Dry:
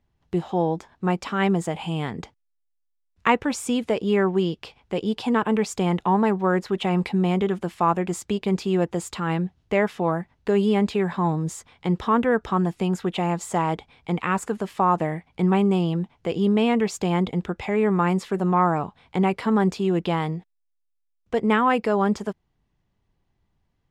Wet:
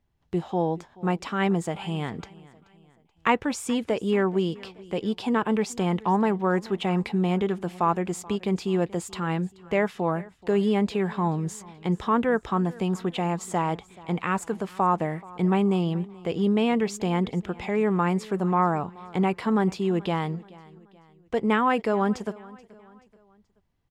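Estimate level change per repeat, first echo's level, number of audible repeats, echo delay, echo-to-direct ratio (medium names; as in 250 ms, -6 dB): -7.5 dB, -21.5 dB, 2, 430 ms, -20.5 dB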